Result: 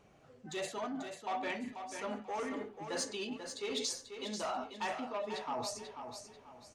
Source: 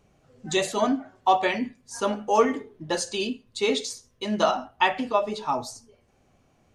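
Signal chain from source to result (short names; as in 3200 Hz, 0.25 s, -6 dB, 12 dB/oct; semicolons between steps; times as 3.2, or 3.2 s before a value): soft clip -20.5 dBFS, distortion -10 dB; LPF 1400 Hz 6 dB/oct; reverse; compressor 6:1, threshold -39 dBFS, peak gain reduction 14.5 dB; reverse; tilt +2.5 dB/oct; feedback echo 0.489 s, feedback 32%, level -8 dB; gain +3.5 dB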